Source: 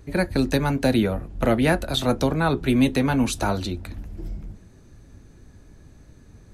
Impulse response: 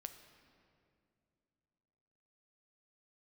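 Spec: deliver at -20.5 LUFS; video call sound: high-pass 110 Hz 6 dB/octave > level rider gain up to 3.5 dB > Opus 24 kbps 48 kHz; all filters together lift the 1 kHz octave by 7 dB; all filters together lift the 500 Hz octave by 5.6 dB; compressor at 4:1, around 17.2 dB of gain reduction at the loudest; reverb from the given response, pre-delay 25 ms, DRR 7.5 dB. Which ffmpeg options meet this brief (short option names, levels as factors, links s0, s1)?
-filter_complex "[0:a]equalizer=f=500:t=o:g=5,equalizer=f=1000:t=o:g=7.5,acompressor=threshold=0.0224:ratio=4,asplit=2[s0][s1];[1:a]atrim=start_sample=2205,adelay=25[s2];[s1][s2]afir=irnorm=-1:irlink=0,volume=0.708[s3];[s0][s3]amix=inputs=2:normalize=0,highpass=f=110:p=1,dynaudnorm=m=1.5,volume=5.62" -ar 48000 -c:a libopus -b:a 24k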